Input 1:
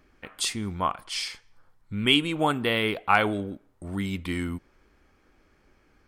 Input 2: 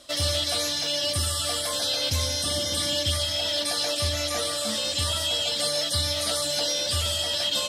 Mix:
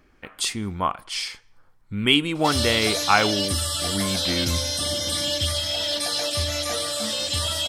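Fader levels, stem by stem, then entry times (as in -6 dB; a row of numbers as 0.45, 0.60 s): +2.5, +1.0 dB; 0.00, 2.35 s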